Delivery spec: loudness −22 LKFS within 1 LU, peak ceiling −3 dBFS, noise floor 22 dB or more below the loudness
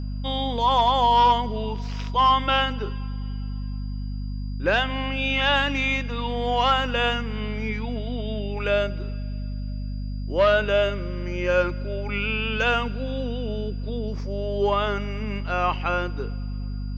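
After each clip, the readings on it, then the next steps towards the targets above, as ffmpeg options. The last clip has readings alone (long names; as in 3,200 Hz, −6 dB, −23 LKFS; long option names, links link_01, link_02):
mains hum 50 Hz; hum harmonics up to 250 Hz; level of the hum −27 dBFS; interfering tone 4,800 Hz; level of the tone −53 dBFS; integrated loudness −24.5 LKFS; sample peak −8.0 dBFS; target loudness −22.0 LKFS
→ -af "bandreject=frequency=50:width_type=h:width=4,bandreject=frequency=100:width_type=h:width=4,bandreject=frequency=150:width_type=h:width=4,bandreject=frequency=200:width_type=h:width=4,bandreject=frequency=250:width_type=h:width=4"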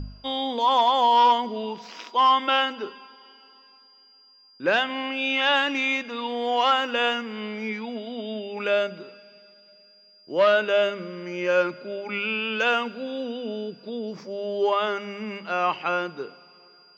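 mains hum none found; interfering tone 4,800 Hz; level of the tone −53 dBFS
→ -af "bandreject=frequency=4800:width=30"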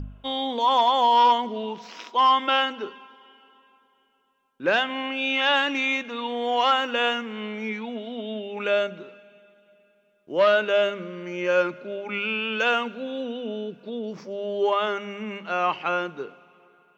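interfering tone none found; integrated loudness −24.5 LKFS; sample peak −8.5 dBFS; target loudness −22.0 LKFS
→ -af "volume=2.5dB"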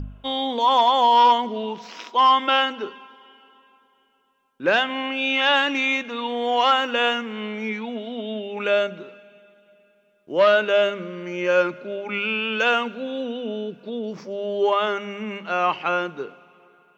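integrated loudness −22.0 LKFS; sample peak −6.0 dBFS; background noise floor −63 dBFS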